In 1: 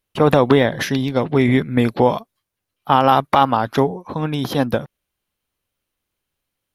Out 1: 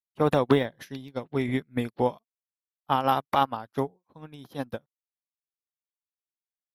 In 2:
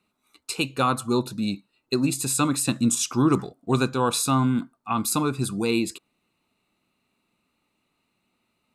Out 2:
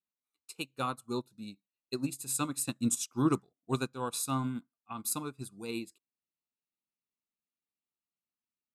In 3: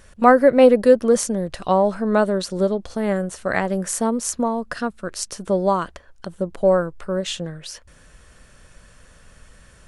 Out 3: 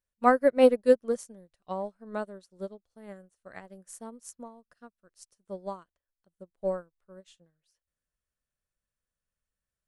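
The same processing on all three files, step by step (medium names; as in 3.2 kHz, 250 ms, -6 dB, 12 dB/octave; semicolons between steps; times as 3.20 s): treble shelf 9.3 kHz +10 dB; upward expansion 2.5:1, over -33 dBFS; trim -5.5 dB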